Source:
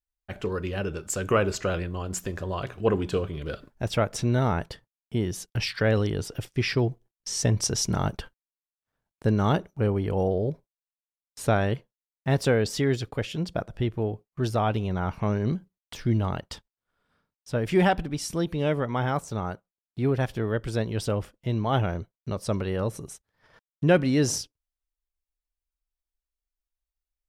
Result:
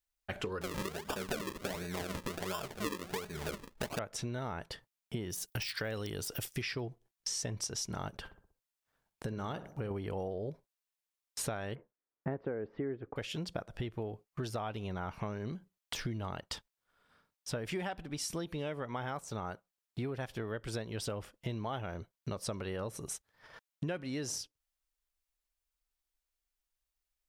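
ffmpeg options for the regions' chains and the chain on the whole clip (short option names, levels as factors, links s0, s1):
-filter_complex "[0:a]asettb=1/sr,asplit=3[s0][s1][s2];[s0]atrim=end=0.614[s3];[s1]atrim=start=0.61:end=3.99,asetpts=PTS-STARTPTS,afade=t=in:d=0.004:c=qsin,afade=t=out:st=3.376:d=0.004:c=qsin,aecho=1:1:4.8:0.7,atrim=end_sample=149058,acrusher=samples=41:mix=1:aa=0.000001:lfo=1:lforange=41:lforate=1.4[s4];[s2]atrim=start=3.986[s5];[s3][s4]acrossfade=d=0.004:c1=hsin:c2=qsin[s6];[s6][s5]acrossfade=d=0.004:c1=qsin:c2=hsin,asettb=1/sr,asplit=3[s7][s8][s9];[s7]atrim=end=5.304[s10];[s8]atrim=start=5.3:end=6.62,asetpts=PTS-STARTPTS,afade=t=in:d=0.004:c=qsin,afade=t=out:st=1.316:d=0.004:c=qsin,deesser=0.9,aemphasis=mode=production:type=50fm[s11];[s9]atrim=start=6.616[s12];[s10][s11]acrossfade=d=0.004:c1=hsin:c2=qsin[s13];[s13][s12]acrossfade=d=0.004:c1=qsin:c2=hsin,asettb=1/sr,asplit=3[s14][s15][s16];[s14]atrim=end=8.094[s17];[s15]atrim=start=8.09:end=9.91,asetpts=PTS-STARTPTS,afade=t=in:d=0.004:c=qsin,afade=t=out:st=1.816:d=0.004:c=qsin,acompressor=threshold=0.0224:ratio=2:attack=3.2:release=140:knee=1:detection=peak,asplit=2[s18][s19];[s19]adelay=63,lowpass=f=1100:p=1,volume=0.224,asplit=2[s20][s21];[s21]adelay=63,lowpass=f=1100:p=1,volume=0.52,asplit=2[s22][s23];[s23]adelay=63,lowpass=f=1100:p=1,volume=0.52,asplit=2[s24][s25];[s25]adelay=63,lowpass=f=1100:p=1,volume=0.52,asplit=2[s26][s27];[s27]adelay=63,lowpass=f=1100:p=1,volume=0.52[s28];[s18][s20][s22][s24][s26][s28]amix=inputs=6:normalize=0,atrim=end_sample=80262[s29];[s16]atrim=start=9.906[s30];[s17][s29]acrossfade=d=0.004:c1=hsin:c2=qsin[s31];[s31][s30]acrossfade=d=0.004:c1=qsin:c2=hsin,asettb=1/sr,asplit=3[s32][s33][s34];[s32]atrim=end=11.754[s35];[s33]atrim=start=11.75:end=13.16,asetpts=PTS-STARTPTS,afade=t=in:d=0.004:c=qsin,afade=t=out:st=1.406:d=0.004:c=qsin,lowpass=f=1800:w=0.5412,lowpass=f=1800:w=1.3066,equalizer=f=340:w=0.85:g=9.5[s36];[s34]atrim=start=13.156[s37];[s35][s36]acrossfade=d=0.004:c1=hsin:c2=qsin[s38];[s38][s37]acrossfade=d=0.004:c1=qsin:c2=hsin,lowshelf=f=440:g=-7,acompressor=threshold=0.0112:ratio=12,volume=1.68"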